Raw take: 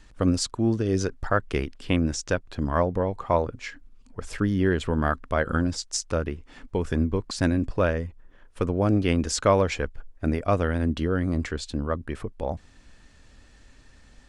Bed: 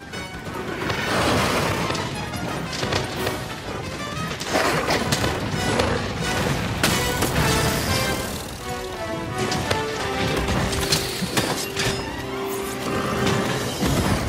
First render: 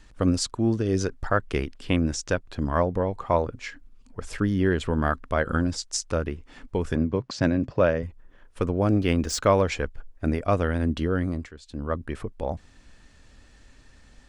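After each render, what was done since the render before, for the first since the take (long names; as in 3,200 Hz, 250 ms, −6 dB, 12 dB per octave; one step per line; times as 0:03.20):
0:06.95–0:08.03: loudspeaker in its box 100–6,200 Hz, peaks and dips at 130 Hz +9 dB, 580 Hz +5 dB, 3,900 Hz −3 dB
0:08.67–0:09.67: running median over 3 samples
0:11.22–0:11.93: duck −14 dB, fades 0.28 s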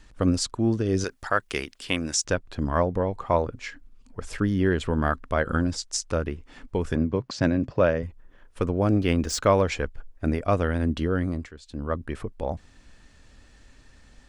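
0:01.04–0:02.25: spectral tilt +3 dB per octave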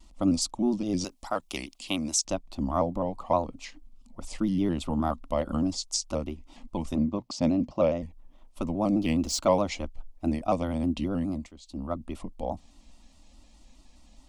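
phaser with its sweep stopped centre 430 Hz, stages 6
pitch modulation by a square or saw wave square 4.8 Hz, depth 100 cents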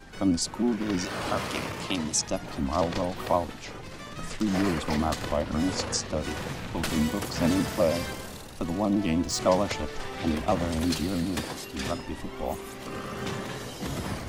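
mix in bed −12 dB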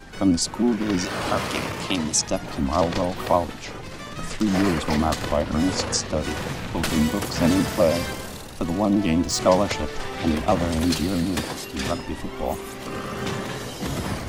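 level +5 dB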